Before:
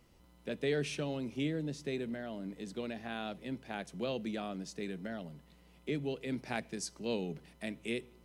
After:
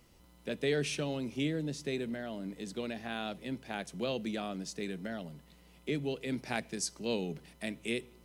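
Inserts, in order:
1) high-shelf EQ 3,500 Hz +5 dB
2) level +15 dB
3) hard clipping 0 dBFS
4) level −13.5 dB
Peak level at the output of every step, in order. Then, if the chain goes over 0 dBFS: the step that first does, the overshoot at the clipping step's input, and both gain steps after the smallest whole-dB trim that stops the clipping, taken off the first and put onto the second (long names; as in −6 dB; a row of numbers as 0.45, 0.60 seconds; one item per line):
−20.0, −5.0, −5.0, −18.5 dBFS
no step passes full scale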